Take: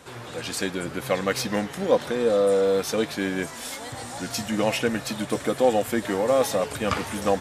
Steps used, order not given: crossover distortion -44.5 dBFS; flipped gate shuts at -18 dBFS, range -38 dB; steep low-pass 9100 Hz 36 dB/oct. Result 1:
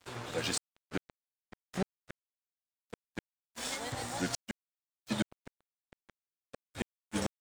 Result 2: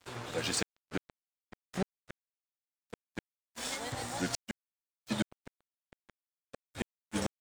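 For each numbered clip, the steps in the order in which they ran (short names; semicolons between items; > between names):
flipped gate > steep low-pass > crossover distortion; steep low-pass > flipped gate > crossover distortion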